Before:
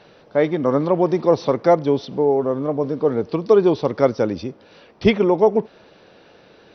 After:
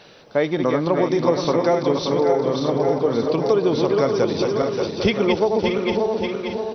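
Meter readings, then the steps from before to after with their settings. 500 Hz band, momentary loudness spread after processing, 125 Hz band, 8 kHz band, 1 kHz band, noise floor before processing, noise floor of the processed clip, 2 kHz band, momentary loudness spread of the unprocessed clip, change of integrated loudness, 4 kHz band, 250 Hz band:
−1.0 dB, 4 LU, 0.0 dB, can't be measured, 0.0 dB, −51 dBFS, −47 dBFS, +2.5 dB, 8 LU, −1.5 dB, +6.5 dB, −0.5 dB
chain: feedback delay that plays each chunk backwards 289 ms, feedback 70%, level −5 dB
downward compressor, threshold −15 dBFS, peak gain reduction 7.5 dB
high-shelf EQ 2,800 Hz +11 dB
on a send: single-tap delay 626 ms −10.5 dB

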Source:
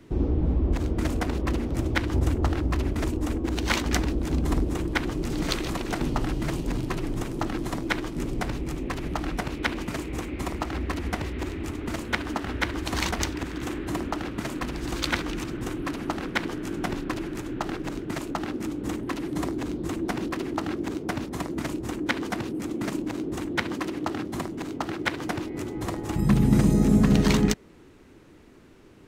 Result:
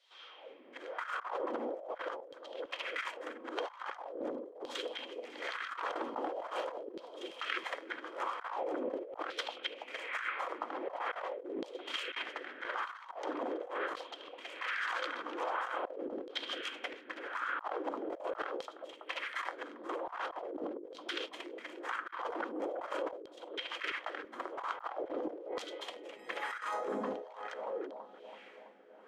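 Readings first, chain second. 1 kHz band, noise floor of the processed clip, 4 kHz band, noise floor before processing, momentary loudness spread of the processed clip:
−4.5 dB, −55 dBFS, −7.0 dB, −51 dBFS, 8 LU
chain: LFO wah 1.1 Hz 230–1,400 Hz, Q 2.8
high-pass filter 160 Hz
auto-filter high-pass saw down 0.43 Hz 400–4,200 Hz
low-shelf EQ 330 Hz −10.5 dB
hollow resonant body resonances 520/3,200 Hz, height 13 dB, ringing for 30 ms
on a send: feedback echo with a low-pass in the loop 330 ms, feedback 81%, low-pass 860 Hz, level −23 dB
on the sum: compressor whose output falls as the input rises −48 dBFS, ratio −1
level +7 dB

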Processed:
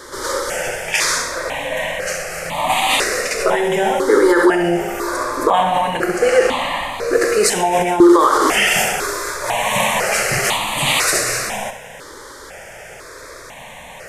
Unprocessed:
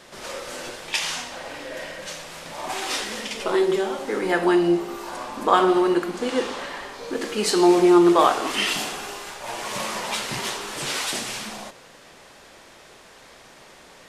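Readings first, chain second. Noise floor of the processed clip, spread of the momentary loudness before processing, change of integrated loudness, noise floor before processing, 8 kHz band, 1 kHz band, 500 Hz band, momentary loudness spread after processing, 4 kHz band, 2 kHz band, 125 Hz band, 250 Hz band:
−37 dBFS, 17 LU, +6.5 dB, −49 dBFS, +11.0 dB, +7.5 dB, +6.5 dB, 22 LU, +6.5 dB, +11.0 dB, +7.5 dB, +3.0 dB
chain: flutter between parallel walls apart 11.3 metres, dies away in 0.42 s
boost into a limiter +14.5 dB
step-sequenced phaser 2 Hz 710–1,500 Hz

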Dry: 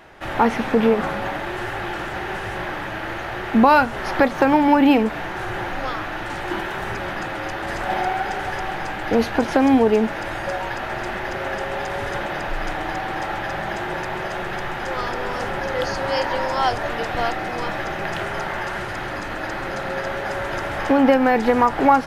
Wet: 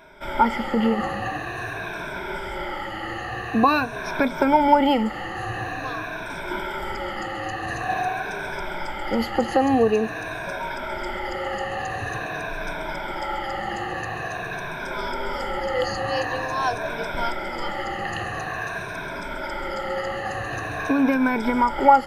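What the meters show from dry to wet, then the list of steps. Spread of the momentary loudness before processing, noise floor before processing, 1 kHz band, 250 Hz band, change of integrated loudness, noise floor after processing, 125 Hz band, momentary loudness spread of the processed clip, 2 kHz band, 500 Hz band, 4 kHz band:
12 LU, −29 dBFS, −1.5 dB, −4.0 dB, −3.0 dB, −32 dBFS, −3.0 dB, 11 LU, −2.5 dB, −4.0 dB, −2.0 dB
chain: rippled gain that drifts along the octave scale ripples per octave 1.6, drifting −0.47 Hz, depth 18 dB
level −6 dB

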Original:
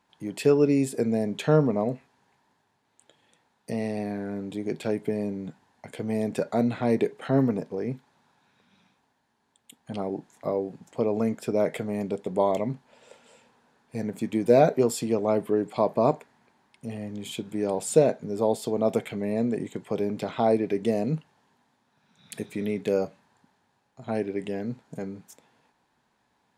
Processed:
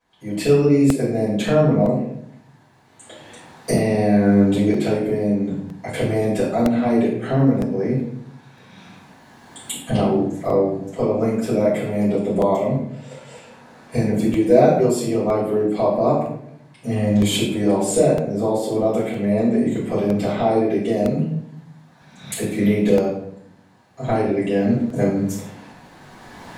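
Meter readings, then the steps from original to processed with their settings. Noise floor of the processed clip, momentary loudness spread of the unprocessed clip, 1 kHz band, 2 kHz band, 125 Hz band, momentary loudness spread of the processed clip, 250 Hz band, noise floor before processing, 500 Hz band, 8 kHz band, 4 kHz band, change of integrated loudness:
−50 dBFS, 14 LU, +6.0 dB, +8.0 dB, +10.0 dB, 14 LU, +9.0 dB, −72 dBFS, +6.5 dB, +8.0 dB, +10.5 dB, +7.5 dB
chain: camcorder AGC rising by 12 dB per second
rectangular room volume 150 cubic metres, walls mixed, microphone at 5.3 metres
regular buffer underruns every 0.96 s, samples 64, repeat, from 0:00.90
level −11.5 dB

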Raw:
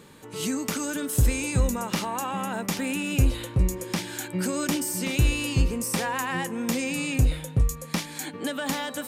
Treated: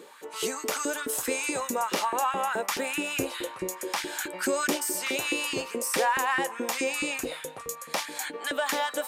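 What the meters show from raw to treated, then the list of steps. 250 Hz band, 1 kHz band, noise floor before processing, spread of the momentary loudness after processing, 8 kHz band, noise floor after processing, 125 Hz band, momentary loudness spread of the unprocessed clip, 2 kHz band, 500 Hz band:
−7.0 dB, +4.0 dB, −41 dBFS, 7 LU, 0.0 dB, −44 dBFS, −24.0 dB, 7 LU, +2.5 dB, +2.5 dB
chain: auto-filter high-pass saw up 4.7 Hz 320–1,700 Hz

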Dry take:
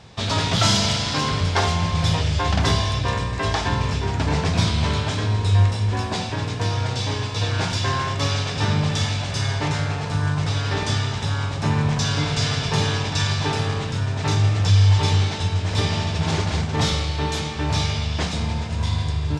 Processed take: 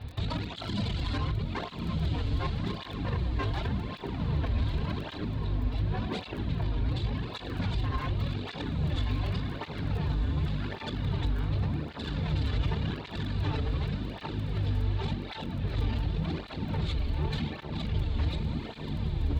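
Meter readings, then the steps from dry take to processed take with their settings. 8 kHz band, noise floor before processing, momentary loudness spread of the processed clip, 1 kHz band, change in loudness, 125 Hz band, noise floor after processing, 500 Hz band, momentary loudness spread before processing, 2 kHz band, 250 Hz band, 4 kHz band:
below −25 dB, −27 dBFS, 5 LU, −14.0 dB, −10.5 dB, −10.0 dB, −41 dBFS, −11.0 dB, 6 LU, −14.5 dB, −7.0 dB, −16.0 dB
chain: sub-octave generator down 1 octave, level +2 dB
reverb reduction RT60 0.91 s
Chebyshev low-pass filter 4,300 Hz, order 5
low-shelf EQ 240 Hz +8.5 dB
downward compressor 3 to 1, threshold −13 dBFS, peak gain reduction 10 dB
brickwall limiter −17 dBFS, peak gain reduction 11.5 dB
surface crackle 17 per second −34 dBFS
soft clipping −23.5 dBFS, distortion −14 dB
on a send: feedback delay with all-pass diffusion 1,420 ms, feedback 48%, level −7 dB
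on the sum: through-zero flanger with one copy inverted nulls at 0.88 Hz, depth 6.2 ms

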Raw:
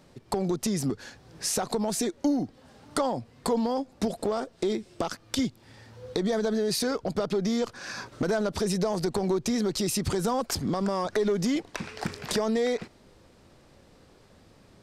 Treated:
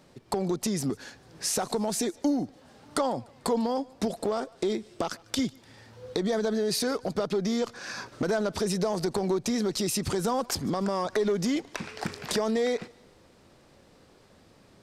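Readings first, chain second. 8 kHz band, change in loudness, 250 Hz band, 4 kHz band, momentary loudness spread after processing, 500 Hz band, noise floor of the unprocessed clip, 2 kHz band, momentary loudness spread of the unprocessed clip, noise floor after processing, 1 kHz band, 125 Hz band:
0.0 dB, −0.5 dB, −1.0 dB, 0.0 dB, 7 LU, −0.5 dB, −57 dBFS, 0.0 dB, 8 LU, −58 dBFS, 0.0 dB, −2.0 dB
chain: low-shelf EQ 100 Hz −6.5 dB
on a send: feedback echo with a high-pass in the loop 148 ms, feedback 44%, level −24 dB

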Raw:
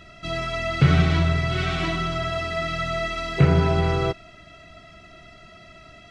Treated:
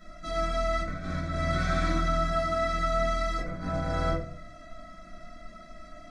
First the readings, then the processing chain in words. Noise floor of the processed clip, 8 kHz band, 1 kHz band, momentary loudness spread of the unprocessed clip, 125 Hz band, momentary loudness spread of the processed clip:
−48 dBFS, can't be measured, −1.5 dB, 9 LU, −12.0 dB, 21 LU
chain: compressor whose output falls as the input rises −22 dBFS, ratio −0.5
phaser with its sweep stopped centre 580 Hz, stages 8
rectangular room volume 51 cubic metres, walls mixed, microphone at 1.4 metres
level −8.5 dB

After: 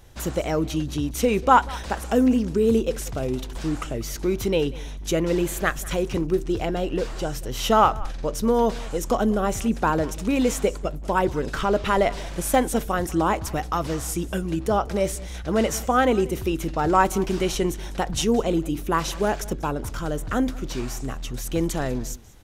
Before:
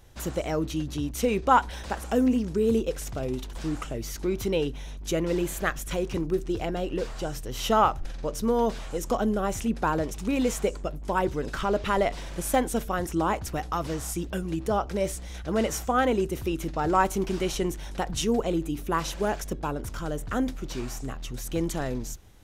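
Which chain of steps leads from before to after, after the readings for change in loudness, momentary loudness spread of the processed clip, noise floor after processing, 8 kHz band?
+4.0 dB, 10 LU, −34 dBFS, +4.0 dB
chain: single-tap delay 190 ms −21 dB
level +4 dB

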